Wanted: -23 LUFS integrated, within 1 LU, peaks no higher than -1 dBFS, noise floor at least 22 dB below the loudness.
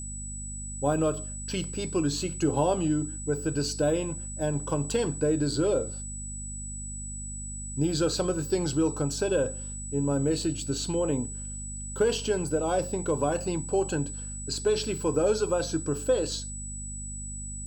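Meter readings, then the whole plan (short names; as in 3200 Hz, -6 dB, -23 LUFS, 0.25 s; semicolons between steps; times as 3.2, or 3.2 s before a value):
hum 50 Hz; harmonics up to 250 Hz; hum level -37 dBFS; steady tone 7900 Hz; tone level -38 dBFS; loudness -29.0 LUFS; peak -12.5 dBFS; loudness target -23.0 LUFS
-> de-hum 50 Hz, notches 5; notch 7900 Hz, Q 30; gain +6 dB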